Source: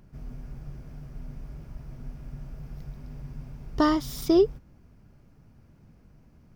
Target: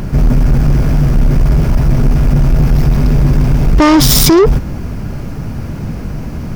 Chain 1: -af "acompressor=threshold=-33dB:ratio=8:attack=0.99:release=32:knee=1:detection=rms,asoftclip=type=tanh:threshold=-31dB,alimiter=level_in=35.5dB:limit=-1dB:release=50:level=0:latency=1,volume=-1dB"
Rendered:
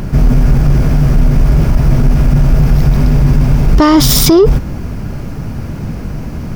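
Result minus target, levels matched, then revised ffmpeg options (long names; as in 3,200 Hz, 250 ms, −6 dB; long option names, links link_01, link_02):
soft clipping: distortion −10 dB
-af "acompressor=threshold=-33dB:ratio=8:attack=0.99:release=32:knee=1:detection=rms,asoftclip=type=tanh:threshold=-38.5dB,alimiter=level_in=35.5dB:limit=-1dB:release=50:level=0:latency=1,volume=-1dB"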